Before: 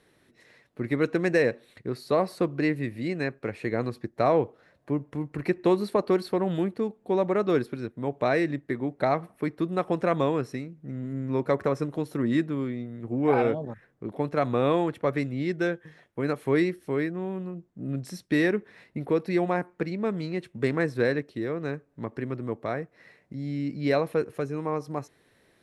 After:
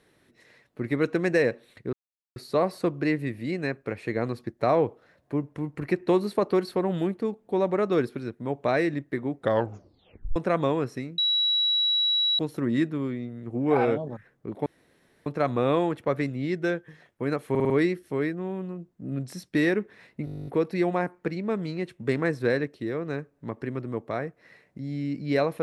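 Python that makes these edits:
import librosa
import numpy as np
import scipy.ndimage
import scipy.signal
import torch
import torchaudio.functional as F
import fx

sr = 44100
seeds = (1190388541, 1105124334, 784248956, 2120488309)

y = fx.edit(x, sr, fx.insert_silence(at_s=1.93, length_s=0.43),
    fx.tape_stop(start_s=8.93, length_s=1.0),
    fx.bleep(start_s=10.75, length_s=1.21, hz=3900.0, db=-20.5),
    fx.insert_room_tone(at_s=14.23, length_s=0.6),
    fx.stutter(start_s=16.47, slice_s=0.05, count=5),
    fx.stutter(start_s=19.02, slice_s=0.02, count=12), tone=tone)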